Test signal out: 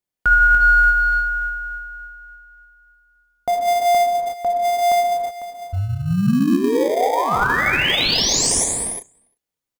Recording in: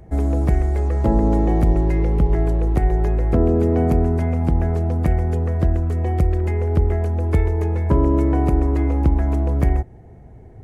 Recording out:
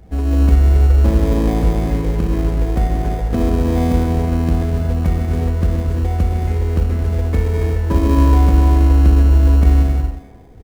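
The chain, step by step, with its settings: comb 4.1 ms, depth 43%; speakerphone echo 0.35 s, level -15 dB; non-linear reverb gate 0.4 s flat, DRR -1 dB; in parallel at -8.5 dB: sample-rate reducer 1400 Hz, jitter 0%; on the sum: gain -4 dB

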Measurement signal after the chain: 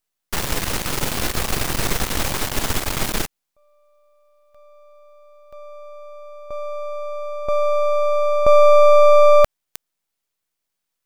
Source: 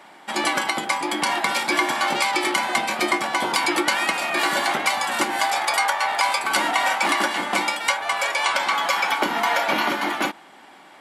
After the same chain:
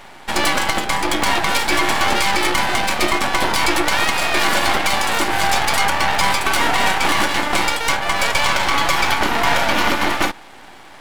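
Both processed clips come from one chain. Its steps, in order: half-wave rectifier; maximiser +12 dB; gain -2 dB

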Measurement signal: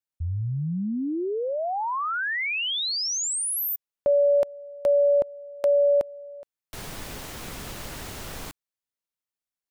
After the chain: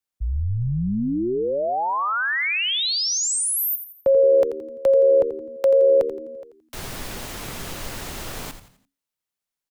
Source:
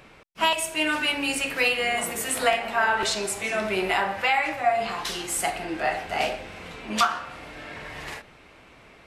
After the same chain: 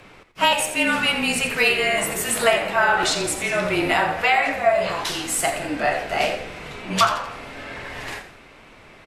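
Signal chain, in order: frequency-shifting echo 85 ms, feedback 40%, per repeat -76 Hz, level -11 dB; frequency shift -28 Hz; gain +4 dB

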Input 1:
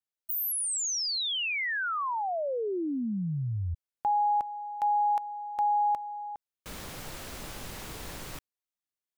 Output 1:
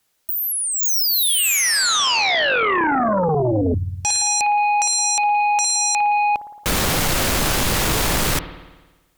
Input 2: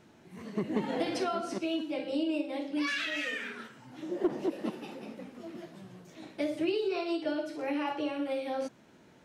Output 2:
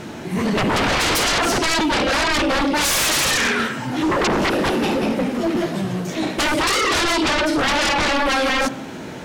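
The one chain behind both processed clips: spring tank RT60 1.2 s, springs 55 ms, chirp 35 ms, DRR 16 dB; sine folder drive 18 dB, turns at -19.5 dBFS; gain +4 dB

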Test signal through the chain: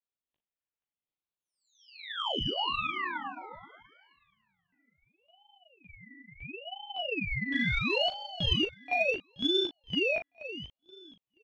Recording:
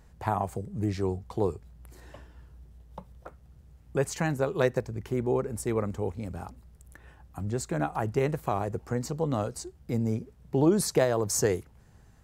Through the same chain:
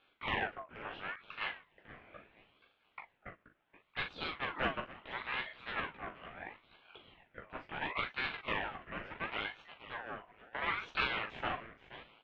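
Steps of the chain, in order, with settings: one-sided fold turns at -24.5 dBFS; tilt +1.5 dB/oct; chorus voices 4, 1.1 Hz, delay 16 ms, depth 3 ms; mistuned SSB -290 Hz 540–2500 Hz; in parallel at -7 dB: soft clip -28 dBFS; on the sum: doubler 40 ms -8 dB; thinning echo 0.478 s, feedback 28%, high-pass 420 Hz, level -12 dB; ring modulator with a swept carrier 1400 Hz, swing 40%, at 0.73 Hz

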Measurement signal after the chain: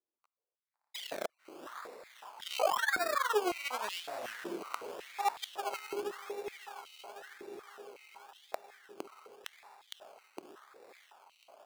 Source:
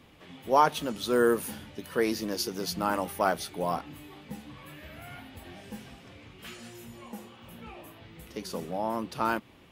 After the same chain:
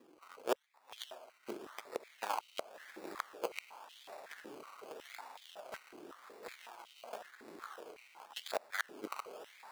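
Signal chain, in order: in parallel at +1.5 dB: compressor 6:1, threshold -39 dBFS; on the sum: one-sided clip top -32.5 dBFS; flange 1.8 Hz, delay 3.6 ms, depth 9 ms, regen +14%; dynamic EQ 5400 Hz, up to +5 dB, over -49 dBFS, Q 1.1; flipped gate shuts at -23 dBFS, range -37 dB; added harmonics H 7 -19 dB, 8 -19 dB, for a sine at -13.5 dBFS; on a send: diffused feedback echo 0.601 s, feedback 76%, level -13 dB; on the sum: decimation with a swept rate 20×, swing 60% 0.9 Hz; stepped high-pass 5.4 Hz 340–3100 Hz

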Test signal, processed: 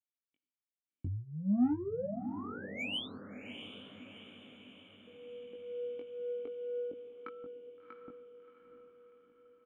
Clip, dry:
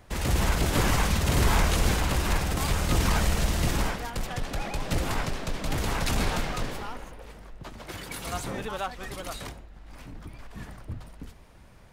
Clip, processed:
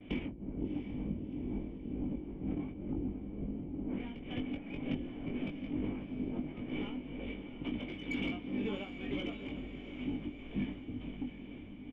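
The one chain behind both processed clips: treble ducked by the level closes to 570 Hz, closed at -21 dBFS; gate with hold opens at -49 dBFS; compressor 16:1, threshold -36 dBFS; vocal tract filter i; overdrive pedal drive 18 dB, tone 1500 Hz, clips at -34 dBFS; tremolo triangle 2.1 Hz, depth 80%; doubler 20 ms -4 dB; diffused feedback echo 0.7 s, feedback 55%, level -10 dB; gain +13.5 dB

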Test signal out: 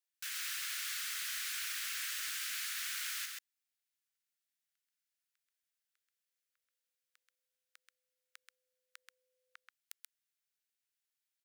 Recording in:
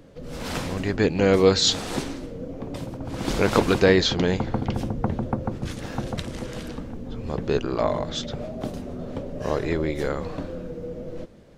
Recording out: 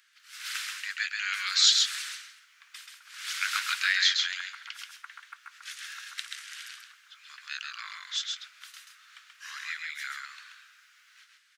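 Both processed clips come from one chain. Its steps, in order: steep high-pass 1400 Hz 48 dB/oct; on a send: echo 0.132 s -4 dB

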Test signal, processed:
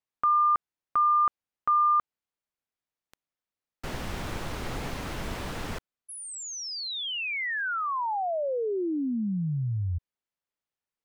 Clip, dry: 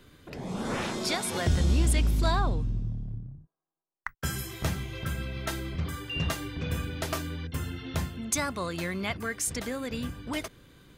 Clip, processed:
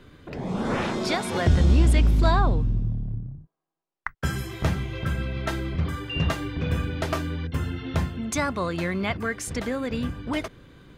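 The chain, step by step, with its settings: LPF 2400 Hz 6 dB/oct; gain +6 dB

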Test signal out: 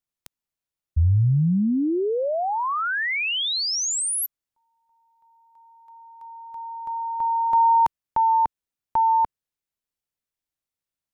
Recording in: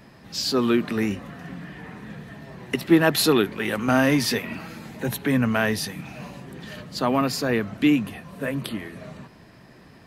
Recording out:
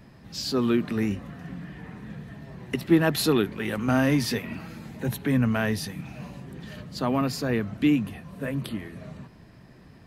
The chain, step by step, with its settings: low shelf 200 Hz +9.5 dB; gain -5.5 dB

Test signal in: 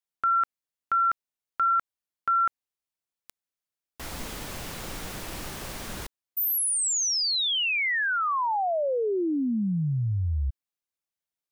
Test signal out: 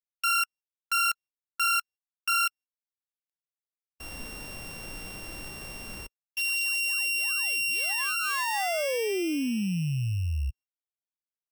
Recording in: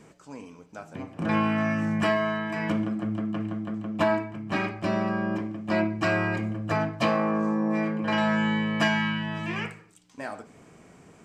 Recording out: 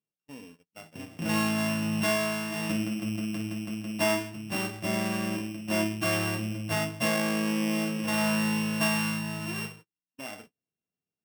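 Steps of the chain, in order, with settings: sample sorter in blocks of 16 samples; harmonic-percussive split percussive -7 dB; gate -46 dBFS, range -39 dB; gain -2 dB

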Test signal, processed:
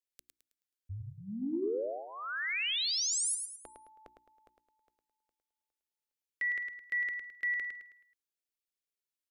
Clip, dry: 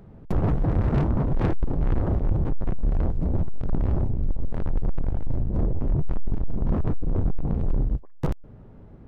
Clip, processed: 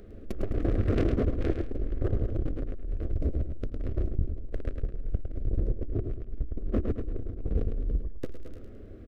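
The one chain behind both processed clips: fixed phaser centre 370 Hz, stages 4; negative-ratio compressor -25 dBFS, ratio -0.5; notches 60/120/180/240/300/360 Hz; on a send: feedback echo 0.107 s, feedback 38%, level -6 dB; on the sum: core saturation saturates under 84 Hz

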